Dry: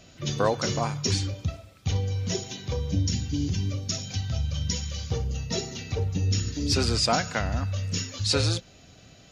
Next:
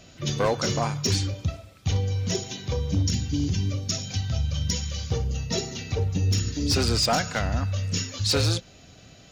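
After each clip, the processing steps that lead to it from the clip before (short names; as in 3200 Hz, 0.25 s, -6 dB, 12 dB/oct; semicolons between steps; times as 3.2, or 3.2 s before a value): hard clip -18.5 dBFS, distortion -18 dB; gain +2 dB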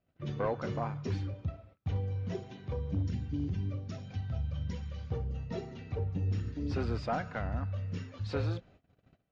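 LPF 1700 Hz 12 dB/oct; gate -48 dBFS, range -21 dB; gain -8.5 dB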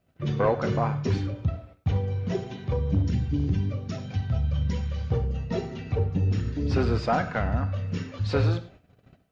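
non-linear reverb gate 0.13 s flat, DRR 11.5 dB; gain +9 dB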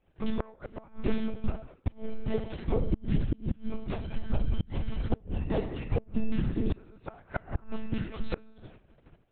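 monotone LPC vocoder at 8 kHz 220 Hz; flipped gate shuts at -16 dBFS, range -28 dB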